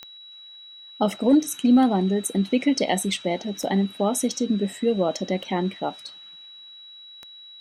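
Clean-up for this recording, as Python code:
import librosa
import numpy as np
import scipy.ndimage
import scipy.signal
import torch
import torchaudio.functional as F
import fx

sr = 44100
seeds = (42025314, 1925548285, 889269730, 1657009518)

y = fx.fix_declick_ar(x, sr, threshold=10.0)
y = fx.notch(y, sr, hz=3900.0, q=30.0)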